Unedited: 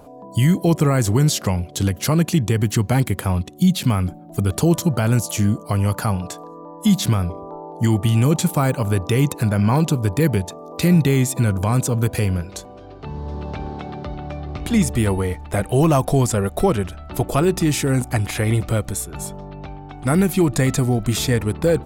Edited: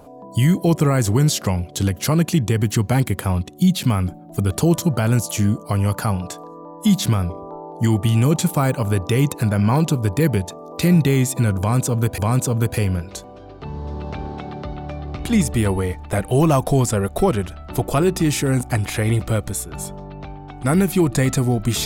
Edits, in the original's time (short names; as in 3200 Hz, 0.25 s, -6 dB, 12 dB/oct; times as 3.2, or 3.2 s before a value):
11.59–12.18 loop, 2 plays